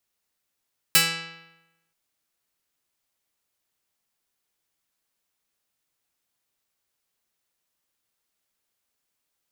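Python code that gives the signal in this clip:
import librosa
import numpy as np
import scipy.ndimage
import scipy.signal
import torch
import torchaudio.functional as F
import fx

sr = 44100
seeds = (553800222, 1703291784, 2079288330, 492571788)

y = fx.pluck(sr, length_s=0.98, note=52, decay_s=0.99, pick=0.47, brightness='medium')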